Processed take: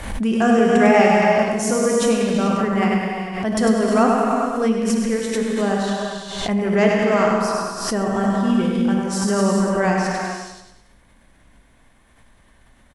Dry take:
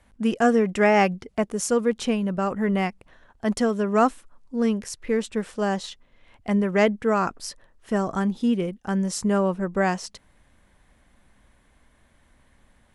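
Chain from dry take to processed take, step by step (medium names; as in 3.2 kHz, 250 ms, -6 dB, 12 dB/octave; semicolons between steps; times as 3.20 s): on a send: feedback delay 101 ms, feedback 44%, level -5 dB; on the sum: gated-style reverb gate 460 ms flat, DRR -1.5 dB; swell ahead of each attack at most 56 dB/s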